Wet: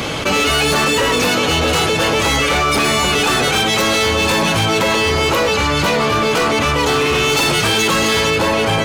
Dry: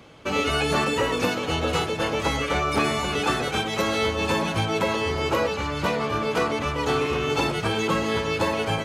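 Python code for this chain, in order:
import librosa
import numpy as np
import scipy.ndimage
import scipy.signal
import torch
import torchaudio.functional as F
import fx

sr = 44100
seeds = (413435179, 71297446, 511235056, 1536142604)

y = fx.high_shelf(x, sr, hz=2200.0, db=fx.steps((0.0, 7.0), (7.14, 12.0), (8.29, 2.5)))
y = np.clip(y, -10.0 ** (-21.0 / 20.0), 10.0 ** (-21.0 / 20.0))
y = fx.env_flatten(y, sr, amount_pct=70)
y = y * librosa.db_to_amplitude(8.0)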